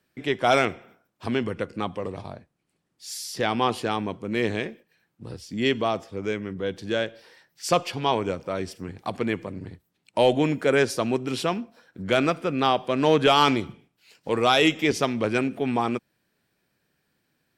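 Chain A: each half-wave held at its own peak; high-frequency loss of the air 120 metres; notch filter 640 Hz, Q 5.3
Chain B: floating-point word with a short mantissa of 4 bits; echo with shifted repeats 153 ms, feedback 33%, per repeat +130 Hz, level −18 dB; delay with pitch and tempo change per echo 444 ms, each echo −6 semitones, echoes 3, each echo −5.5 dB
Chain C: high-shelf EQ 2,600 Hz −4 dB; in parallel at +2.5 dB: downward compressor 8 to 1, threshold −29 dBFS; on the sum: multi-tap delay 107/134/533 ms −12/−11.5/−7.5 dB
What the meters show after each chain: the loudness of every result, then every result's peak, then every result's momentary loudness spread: −22.0, −25.0, −22.0 LKFS; −6.5, −6.0, −4.5 dBFS; 18, 13, 12 LU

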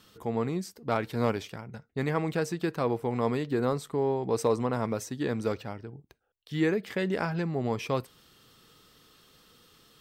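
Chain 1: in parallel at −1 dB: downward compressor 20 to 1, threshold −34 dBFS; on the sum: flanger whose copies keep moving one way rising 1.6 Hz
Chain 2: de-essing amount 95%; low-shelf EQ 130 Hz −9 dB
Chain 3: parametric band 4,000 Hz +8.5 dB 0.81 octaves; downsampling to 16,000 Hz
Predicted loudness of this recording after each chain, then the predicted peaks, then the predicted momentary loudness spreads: −34.0, −31.5, −30.0 LKFS; −17.0, −14.0, −12.0 dBFS; 8, 9, 8 LU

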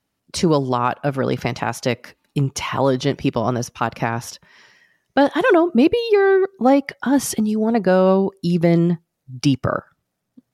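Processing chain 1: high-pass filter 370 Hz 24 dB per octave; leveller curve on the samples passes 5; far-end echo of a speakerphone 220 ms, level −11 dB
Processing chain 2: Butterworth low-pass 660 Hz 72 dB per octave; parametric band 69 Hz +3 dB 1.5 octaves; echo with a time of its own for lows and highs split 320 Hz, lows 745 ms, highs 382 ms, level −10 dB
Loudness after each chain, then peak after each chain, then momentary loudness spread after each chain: −11.0, −19.5 LKFS; −3.5, −4.5 dBFS; 8, 13 LU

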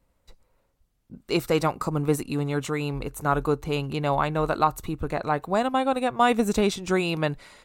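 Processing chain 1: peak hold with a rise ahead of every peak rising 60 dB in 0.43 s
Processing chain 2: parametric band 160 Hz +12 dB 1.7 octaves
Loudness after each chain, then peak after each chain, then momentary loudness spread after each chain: −24.0, −20.0 LKFS; −6.0, −3.0 dBFS; 7, 6 LU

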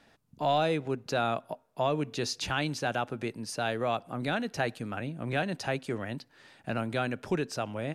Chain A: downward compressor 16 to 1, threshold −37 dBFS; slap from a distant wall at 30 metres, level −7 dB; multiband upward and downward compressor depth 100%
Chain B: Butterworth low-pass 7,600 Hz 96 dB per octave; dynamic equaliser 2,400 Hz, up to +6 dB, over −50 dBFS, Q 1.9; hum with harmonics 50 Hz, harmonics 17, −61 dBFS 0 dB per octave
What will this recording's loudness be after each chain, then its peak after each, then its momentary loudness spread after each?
−41.0, −31.0 LKFS; −24.0, −14.0 dBFS; 2, 7 LU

